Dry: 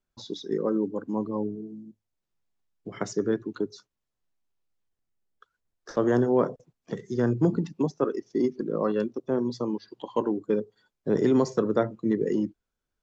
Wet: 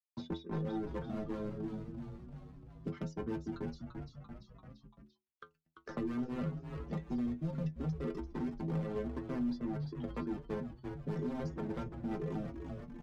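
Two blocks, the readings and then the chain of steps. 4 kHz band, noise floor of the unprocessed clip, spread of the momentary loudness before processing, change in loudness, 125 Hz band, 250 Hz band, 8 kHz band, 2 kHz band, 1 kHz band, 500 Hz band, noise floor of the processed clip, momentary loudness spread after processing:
−11.5 dB, −84 dBFS, 14 LU, −12.0 dB, −5.0 dB, −10.5 dB, can't be measured, −10.5 dB, −12.0 dB, −16.0 dB, −78 dBFS, 15 LU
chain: mu-law and A-law mismatch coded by A
reverb reduction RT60 0.53 s
low-pass filter 4,400 Hz 12 dB per octave
parametric band 170 Hz +14.5 dB 1 octave
reversed playback
downward compressor 8 to 1, threshold −27 dBFS, peak gain reduction 18.5 dB
reversed playback
hard clipping −32.5 dBFS, distortion −7 dB
rotating-speaker cabinet horn 5 Hz
stiff-string resonator 78 Hz, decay 0.26 s, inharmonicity 0.008
on a send: echo with shifted repeats 341 ms, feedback 38%, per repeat −93 Hz, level −9 dB
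on the sum: multiband upward and downward compressor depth 70%
level +7 dB

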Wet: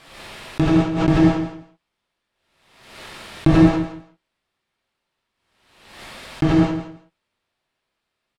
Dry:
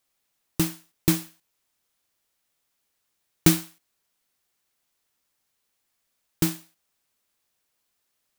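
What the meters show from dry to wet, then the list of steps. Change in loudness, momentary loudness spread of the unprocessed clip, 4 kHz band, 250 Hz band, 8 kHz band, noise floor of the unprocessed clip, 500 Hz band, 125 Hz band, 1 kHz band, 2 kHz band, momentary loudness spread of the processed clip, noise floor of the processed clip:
+7.0 dB, 8 LU, +1.0 dB, +11.5 dB, below −10 dB, −77 dBFS, +13.0 dB, +10.0 dB, +15.0 dB, +8.0 dB, 22 LU, −79 dBFS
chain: treble cut that deepens with the level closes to 570 Hz, closed at −25 dBFS
parametric band 6,400 Hz −10 dB 0.73 octaves
in parallel at −5.5 dB: fuzz pedal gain 44 dB, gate −39 dBFS
on the sum: high-frequency loss of the air 97 metres
on a send: repeating echo 164 ms, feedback 17%, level −11.5 dB
on the sum: reverb whose tail is shaped and stops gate 240 ms flat, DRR −7.5 dB
background raised ahead of every attack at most 58 dB per second
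level −2.5 dB

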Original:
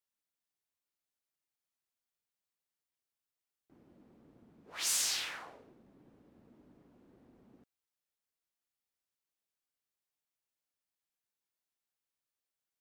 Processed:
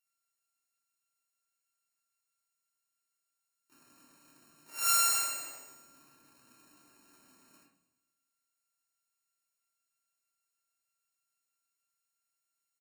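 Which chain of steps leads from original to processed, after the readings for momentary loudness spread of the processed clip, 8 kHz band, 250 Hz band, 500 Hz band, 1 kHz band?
20 LU, +5.0 dB, −3.0 dB, +1.0 dB, +13.0 dB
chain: samples sorted by size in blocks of 32 samples
spectral tilt +3.5 dB per octave
noise that follows the level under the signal 25 dB
flanger 0.21 Hz, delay 5.4 ms, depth 5.5 ms, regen −68%
Butterworth band-reject 3,400 Hz, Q 4.2
double-tracking delay 27 ms −12.5 dB
delay that swaps between a low-pass and a high-pass 106 ms, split 2,400 Hz, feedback 62%, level −14 dB
rectangular room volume 780 cubic metres, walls furnished, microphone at 2.7 metres

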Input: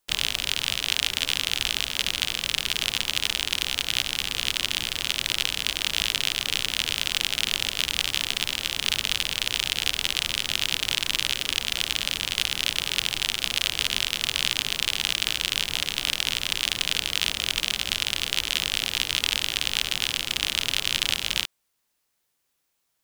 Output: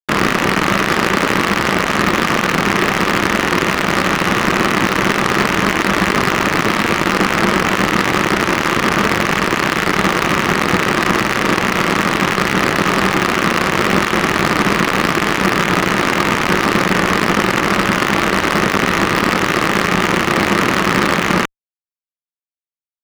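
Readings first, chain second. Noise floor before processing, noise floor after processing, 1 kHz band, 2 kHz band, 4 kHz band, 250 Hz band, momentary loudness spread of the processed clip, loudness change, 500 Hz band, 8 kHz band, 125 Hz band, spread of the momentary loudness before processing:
−75 dBFS, below −85 dBFS, +25.0 dB, +14.0 dB, 0.0 dB, +28.0 dB, 1 LU, +9.5 dB, +26.0 dB, +3.5 dB, +21.5 dB, 2 LU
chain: phase distortion by the signal itself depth 0.19 ms
loudspeaker in its box 160–2,000 Hz, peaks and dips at 190 Hz +10 dB, 350 Hz +7 dB, 720 Hz −3 dB, 1,200 Hz +7 dB, 1,900 Hz +3 dB
fuzz pedal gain 36 dB, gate −42 dBFS
level +8 dB

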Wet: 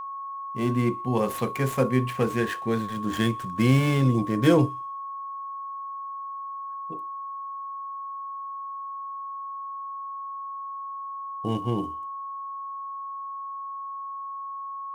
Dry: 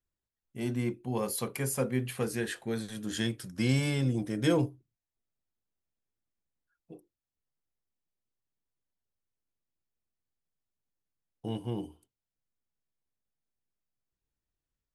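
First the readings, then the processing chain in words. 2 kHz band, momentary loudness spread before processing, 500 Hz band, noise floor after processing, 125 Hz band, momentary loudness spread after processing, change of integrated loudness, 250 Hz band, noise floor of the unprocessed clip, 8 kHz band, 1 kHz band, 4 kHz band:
+6.0 dB, 10 LU, +7.5 dB, −36 dBFS, +7.5 dB, 13 LU, +3.5 dB, +7.5 dB, below −85 dBFS, −3.5 dB, +19.0 dB, +2.5 dB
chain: running median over 9 samples
delay with a high-pass on its return 62 ms, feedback 60%, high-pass 2,600 Hz, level −22 dB
steady tone 1,100 Hz −40 dBFS
level +7.5 dB

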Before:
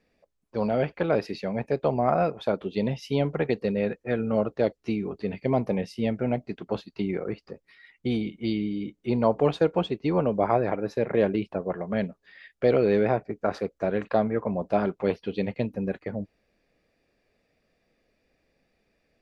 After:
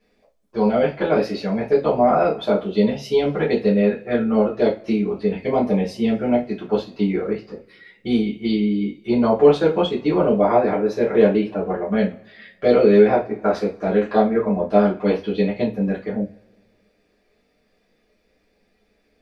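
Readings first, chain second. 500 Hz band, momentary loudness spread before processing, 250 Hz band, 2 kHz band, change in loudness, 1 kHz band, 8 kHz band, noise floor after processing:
+7.5 dB, 9 LU, +8.0 dB, +6.0 dB, +7.5 dB, +6.5 dB, can't be measured, −65 dBFS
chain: coupled-rooms reverb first 0.26 s, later 1.7 s, from −28 dB, DRR −7 dB
level −1.5 dB

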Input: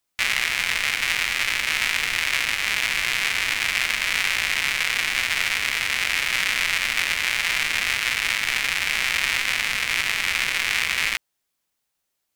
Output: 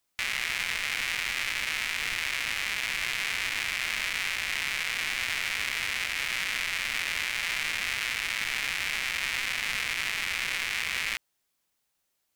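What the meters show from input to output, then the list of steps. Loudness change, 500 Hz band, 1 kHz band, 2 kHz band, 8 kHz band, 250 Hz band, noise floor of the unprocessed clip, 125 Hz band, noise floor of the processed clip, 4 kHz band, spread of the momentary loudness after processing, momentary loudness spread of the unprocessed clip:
−7.5 dB, −7.0 dB, −7.5 dB, −7.5 dB, −7.5 dB, −6.5 dB, −78 dBFS, −6.5 dB, −78 dBFS, −7.5 dB, 0 LU, 1 LU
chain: brickwall limiter −14.5 dBFS, peak gain reduction 10.5 dB

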